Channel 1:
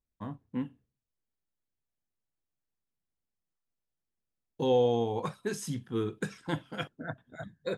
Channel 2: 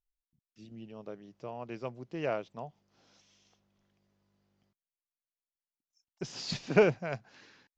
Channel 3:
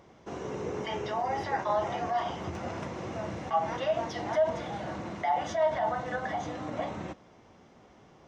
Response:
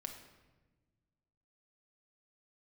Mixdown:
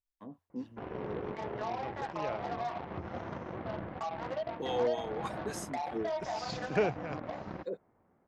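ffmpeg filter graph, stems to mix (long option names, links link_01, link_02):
-filter_complex "[0:a]agate=range=-15dB:threshold=-58dB:ratio=16:detection=peak,acrossover=split=650[link_01][link_02];[link_01]aeval=exprs='val(0)*(1-1/2+1/2*cos(2*PI*3.5*n/s))':channel_layout=same[link_03];[link_02]aeval=exprs='val(0)*(1-1/2-1/2*cos(2*PI*3.5*n/s))':channel_layout=same[link_04];[link_03][link_04]amix=inputs=2:normalize=0,highpass=300,volume=-0.5dB[link_05];[1:a]equalizer=frequency=88:width_type=o:width=0.26:gain=15,volume=-6dB,asplit=2[link_06][link_07];[2:a]lowpass=frequency=1800:width=0.5412,lowpass=frequency=1800:width=1.3066,alimiter=level_in=2dB:limit=-24dB:level=0:latency=1:release=237,volume=-2dB,aeval=exprs='0.0501*(cos(1*acos(clip(val(0)/0.0501,-1,1)))-cos(1*PI/2))+0.00316*(cos(3*acos(clip(val(0)/0.0501,-1,1)))-cos(3*PI/2))+0.00398*(cos(7*acos(clip(val(0)/0.0501,-1,1)))-cos(7*PI/2))':channel_layout=same,adelay=500,volume=-1.5dB[link_08];[link_07]apad=whole_len=342948[link_09];[link_05][link_09]sidechaincompress=threshold=-50dB:ratio=8:attack=16:release=218[link_10];[link_10][link_06][link_08]amix=inputs=3:normalize=0"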